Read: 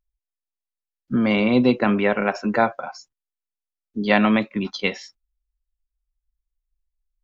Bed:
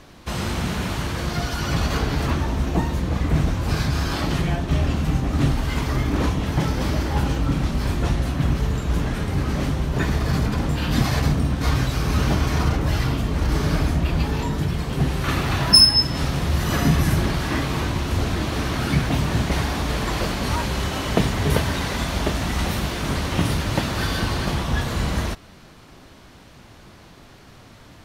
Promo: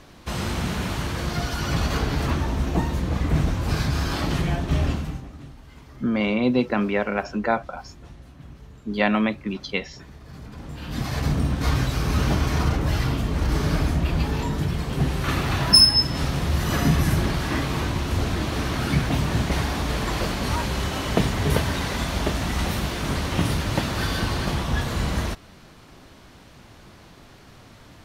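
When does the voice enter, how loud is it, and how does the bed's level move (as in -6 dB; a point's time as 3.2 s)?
4.90 s, -3.5 dB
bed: 4.9 s -1.5 dB
5.43 s -22.5 dB
10.21 s -22.5 dB
11.38 s -1.5 dB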